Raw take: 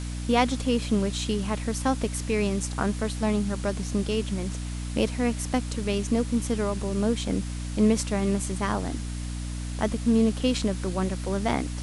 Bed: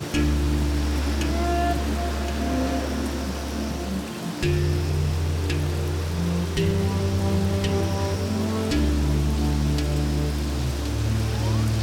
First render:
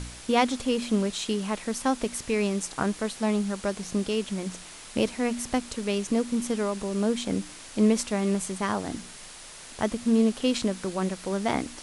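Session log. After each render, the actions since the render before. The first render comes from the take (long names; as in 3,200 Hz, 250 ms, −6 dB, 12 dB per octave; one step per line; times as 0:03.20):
hum removal 60 Hz, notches 5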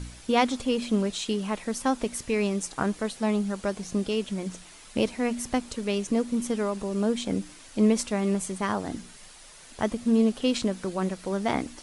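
broadband denoise 7 dB, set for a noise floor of −45 dBFS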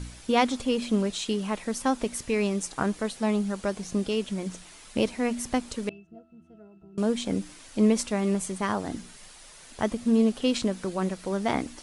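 0:05.89–0:06.98: resonances in every octave E, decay 0.35 s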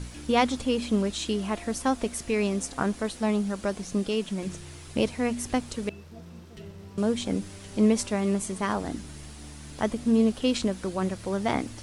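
mix in bed −22 dB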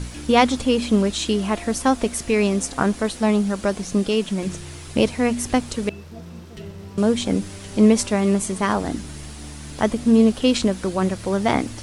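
level +7 dB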